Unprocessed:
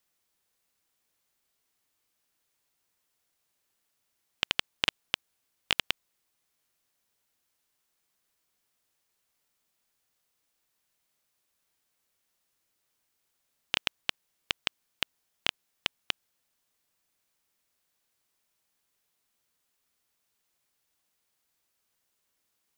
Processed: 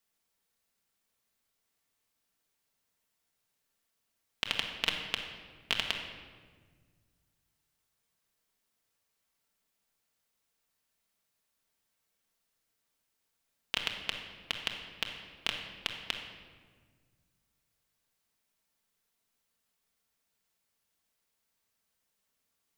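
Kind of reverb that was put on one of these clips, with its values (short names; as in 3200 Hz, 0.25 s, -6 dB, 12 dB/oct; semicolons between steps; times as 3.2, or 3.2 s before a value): shoebox room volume 1800 m³, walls mixed, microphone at 1.6 m; gain -4.5 dB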